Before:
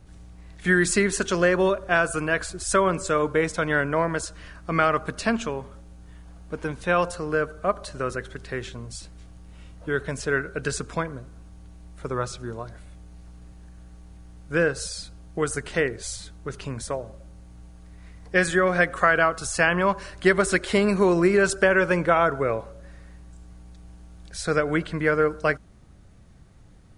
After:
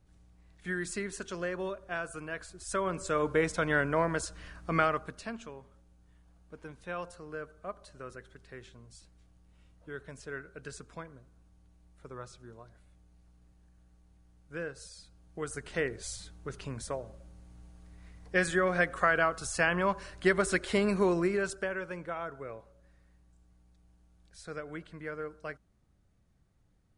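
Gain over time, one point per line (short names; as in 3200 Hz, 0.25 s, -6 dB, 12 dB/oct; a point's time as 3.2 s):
2.49 s -15 dB
3.33 s -5 dB
4.78 s -5 dB
5.29 s -16.5 dB
15.01 s -16.5 dB
15.93 s -7 dB
21.06 s -7 dB
21.87 s -18 dB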